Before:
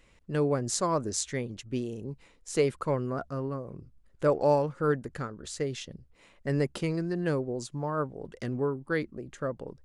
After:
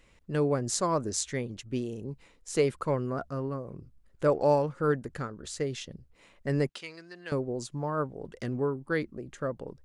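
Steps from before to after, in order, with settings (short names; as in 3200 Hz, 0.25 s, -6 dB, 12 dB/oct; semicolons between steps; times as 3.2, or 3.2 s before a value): 6.69–7.32 band-pass 3300 Hz, Q 0.77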